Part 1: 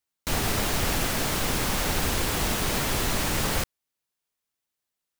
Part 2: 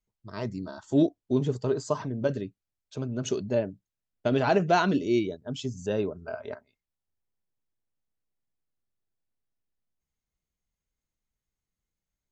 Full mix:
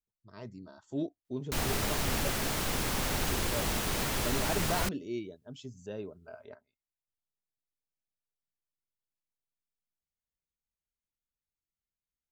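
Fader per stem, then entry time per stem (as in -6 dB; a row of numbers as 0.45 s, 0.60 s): -5.5 dB, -12.0 dB; 1.25 s, 0.00 s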